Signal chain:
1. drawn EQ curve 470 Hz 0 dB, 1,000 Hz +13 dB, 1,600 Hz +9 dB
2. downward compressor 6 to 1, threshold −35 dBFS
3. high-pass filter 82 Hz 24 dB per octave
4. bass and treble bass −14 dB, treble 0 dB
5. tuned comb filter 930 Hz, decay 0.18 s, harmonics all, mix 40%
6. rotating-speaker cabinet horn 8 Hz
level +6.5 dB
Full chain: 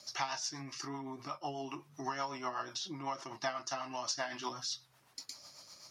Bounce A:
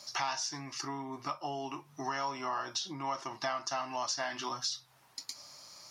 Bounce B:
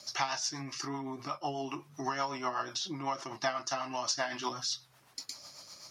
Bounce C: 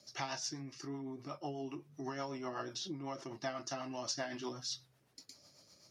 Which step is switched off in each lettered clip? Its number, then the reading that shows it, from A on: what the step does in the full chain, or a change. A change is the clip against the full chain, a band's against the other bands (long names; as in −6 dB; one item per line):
6, change in crest factor −2.5 dB
5, change in integrated loudness +4.0 LU
1, 250 Hz band +5.0 dB